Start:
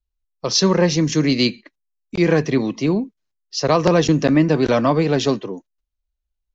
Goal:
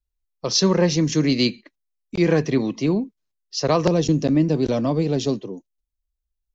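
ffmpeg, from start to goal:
-af "asetnsamples=n=441:p=0,asendcmd='3.88 equalizer g -13.5',equalizer=f=1.5k:t=o:w=2:g=-3,volume=-1.5dB"

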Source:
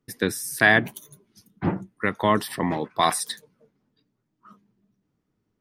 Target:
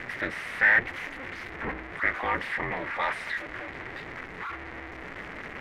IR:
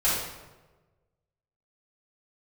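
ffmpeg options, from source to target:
-af "aeval=exprs='val(0)+0.5*0.0708*sgn(val(0))':c=same,aemphasis=mode=production:type=bsi,aeval=exprs='val(0)*sin(2*PI*130*n/s)':c=same,asoftclip=type=hard:threshold=-16.5dB,lowpass=f=2k:t=q:w=4.5,volume=-6.5dB"

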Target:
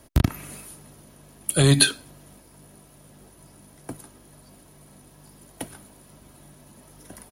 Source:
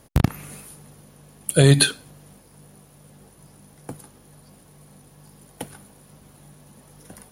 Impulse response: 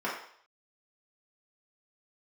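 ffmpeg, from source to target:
-filter_complex "[0:a]aecho=1:1:3.1:0.34,acrossover=split=250|1900[a][b][c];[b]asoftclip=type=tanh:threshold=-21.5dB[d];[a][d][c]amix=inputs=3:normalize=0"

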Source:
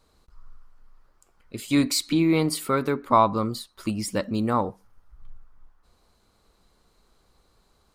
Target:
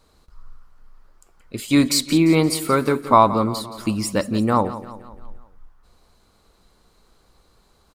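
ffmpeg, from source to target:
-af "aecho=1:1:173|346|519|692|865:0.188|0.0961|0.049|0.025|0.0127,volume=5dB"

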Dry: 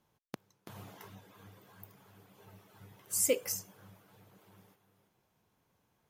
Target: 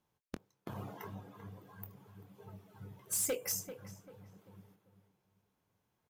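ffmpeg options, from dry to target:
-filter_complex "[0:a]afftdn=nr=13:nf=-53,acompressor=threshold=-38dB:ratio=4,asoftclip=type=hard:threshold=-36dB,asplit=2[a][b];[b]adelay=24,volume=-11.5dB[c];[a][c]amix=inputs=2:normalize=0,asplit=2[d][e];[e]adelay=391,lowpass=f=2.1k:p=1,volume=-11.5dB,asplit=2[f][g];[g]adelay=391,lowpass=f=2.1k:p=1,volume=0.35,asplit=2[h][i];[i]adelay=391,lowpass=f=2.1k:p=1,volume=0.35,asplit=2[j][k];[k]adelay=391,lowpass=f=2.1k:p=1,volume=0.35[l];[d][f][h][j][l]amix=inputs=5:normalize=0,volume=6.5dB"

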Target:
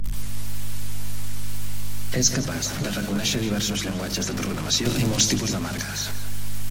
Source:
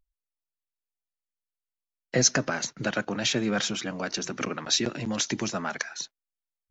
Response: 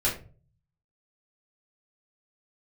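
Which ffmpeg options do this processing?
-filter_complex "[0:a]aeval=exprs='val(0)+0.5*0.0501*sgn(val(0))':c=same,equalizer=f=110:w=3.3:g=-2.5,asettb=1/sr,asplit=3[a][b][c];[a]atrim=end=4.854[d];[b]atrim=start=4.85:end=5.36,asetpts=PTS-STARTPTS,afade=t=in:d=0.004:c=qsin,afade=t=out:st=0.506:d=0.004:c=qsin,acontrast=55[e];[c]atrim=start=5.356[f];[d][e]acrossfade=d=0.004:c1=hsin:c2=qsin[g];[g][f]acrossfade=d=0.004:c1=qsin:c2=hsin,aeval=exprs='val(0)+0.0158*(sin(2*PI*50*n/s)+sin(2*PI*2*50*n/s)/2+sin(2*PI*3*50*n/s)/3+sin(2*PI*4*50*n/s)/4+sin(2*PI*5*50*n/s)/5)':c=same,asplit=3[h][i][j];[h]afade=t=out:st=2.74:d=0.02[k];[i]asplit=2[l][m];[m]adelay=14,volume=-6.5dB[n];[l][n]amix=inputs=2:normalize=0,afade=t=in:st=2.74:d=0.02,afade=t=out:st=3.33:d=0.02[o];[j]afade=t=in:st=3.33:d=0.02[p];[k][o][p]amix=inputs=3:normalize=0,asplit=2[q][r];[r]adelay=171,lowpass=f=2.5k:p=1,volume=-10dB,asplit=2[s][t];[t]adelay=171,lowpass=f=2.5k:p=1,volume=0.4,asplit=2[u][v];[v]adelay=171,lowpass=f=2.5k:p=1,volume=0.4,asplit=2[w][x];[x]adelay=171,lowpass=f=2.5k:p=1,volume=0.4[y];[q][s][u][w][y]amix=inputs=5:normalize=0,asplit=2[z][aa];[1:a]atrim=start_sample=2205,asetrate=70560,aresample=44100,lowshelf=f=290:g=10.5[ab];[aa][ab]afir=irnorm=-1:irlink=0,volume=-21.5dB[ac];[z][ac]amix=inputs=2:normalize=0,acrossover=split=370|3000[ad][ae][af];[ae]acompressor=threshold=-32dB:ratio=8[ag];[ad][ag][af]amix=inputs=3:normalize=0" -ar 44100 -c:a libmp3lame -b:a 64k

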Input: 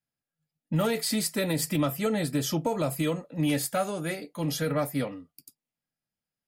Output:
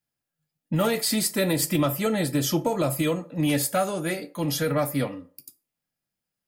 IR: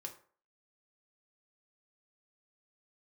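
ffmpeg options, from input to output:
-filter_complex "[0:a]asplit=2[a][b];[1:a]atrim=start_sample=2205,highshelf=f=11k:g=10.5[c];[b][c]afir=irnorm=-1:irlink=0,volume=-1dB[d];[a][d]amix=inputs=2:normalize=0"

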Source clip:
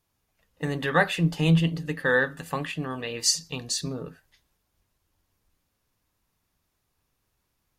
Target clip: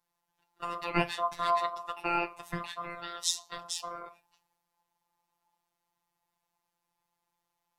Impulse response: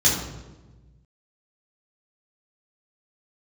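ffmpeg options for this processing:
-af "aeval=exprs='val(0)*sin(2*PI*900*n/s)':c=same,equalizer=f=89:w=1.5:g=13.5,afftfilt=real='hypot(re,im)*cos(PI*b)':imag='0':win_size=1024:overlap=0.75,volume=-1.5dB"

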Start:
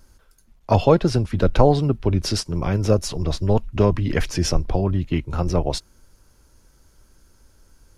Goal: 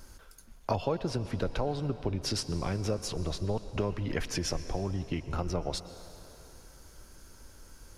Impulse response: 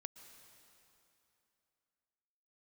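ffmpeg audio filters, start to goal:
-filter_complex "[0:a]acompressor=threshold=-34dB:ratio=4,asplit=2[a][b];[1:a]atrim=start_sample=2205,lowshelf=f=250:g=-6.5[c];[b][c]afir=irnorm=-1:irlink=0,volume=11dB[d];[a][d]amix=inputs=2:normalize=0,volume=-4.5dB"

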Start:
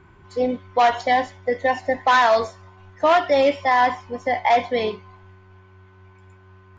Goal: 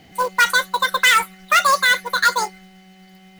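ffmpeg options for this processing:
-af "aemphasis=mode=production:type=50fm,asetrate=88200,aresample=44100,acrusher=bits=4:mode=log:mix=0:aa=0.000001,volume=2dB"

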